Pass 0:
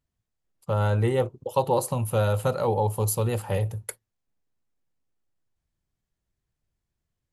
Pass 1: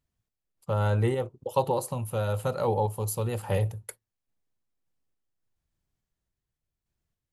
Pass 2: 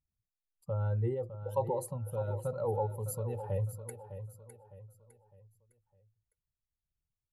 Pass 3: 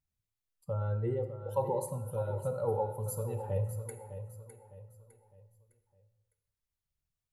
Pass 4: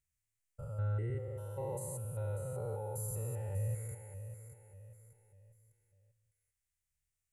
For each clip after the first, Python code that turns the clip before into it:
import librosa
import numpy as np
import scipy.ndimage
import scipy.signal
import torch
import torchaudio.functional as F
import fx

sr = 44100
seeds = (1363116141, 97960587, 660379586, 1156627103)

y1 = fx.tremolo_random(x, sr, seeds[0], hz=3.5, depth_pct=55)
y2 = fx.spec_expand(y1, sr, power=1.6)
y2 = fx.echo_feedback(y2, sr, ms=607, feedback_pct=38, wet_db=-11.0)
y2 = y2 * 10.0 ** (-6.5 / 20.0)
y3 = fx.rev_plate(y2, sr, seeds[1], rt60_s=0.93, hf_ratio=0.8, predelay_ms=0, drr_db=7.0)
y4 = fx.spec_steps(y3, sr, hold_ms=200)
y4 = fx.graphic_eq_10(y4, sr, hz=(250, 500, 1000, 2000, 4000, 8000), db=(-10, -3, -11, 8, -7, 9))
y4 = y4 * 10.0 ** (1.0 / 20.0)